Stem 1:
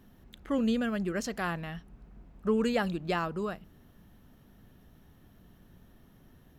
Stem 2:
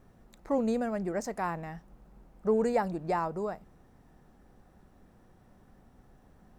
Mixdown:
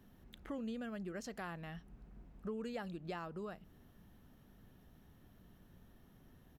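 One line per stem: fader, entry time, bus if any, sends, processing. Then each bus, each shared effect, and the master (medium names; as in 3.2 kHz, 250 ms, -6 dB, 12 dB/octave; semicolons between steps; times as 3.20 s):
-5.0 dB, 0.00 s, no send, none
-18.5 dB, 0.5 ms, no send, none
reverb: none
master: compression 2.5:1, threshold -45 dBFS, peak gain reduction 13 dB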